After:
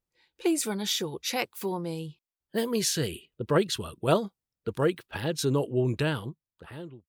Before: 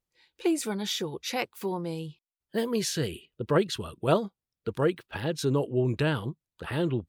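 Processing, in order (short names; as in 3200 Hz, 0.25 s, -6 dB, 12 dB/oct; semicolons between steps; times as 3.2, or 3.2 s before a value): ending faded out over 1.20 s; high shelf 4800 Hz +6.5 dB; mismatched tape noise reduction decoder only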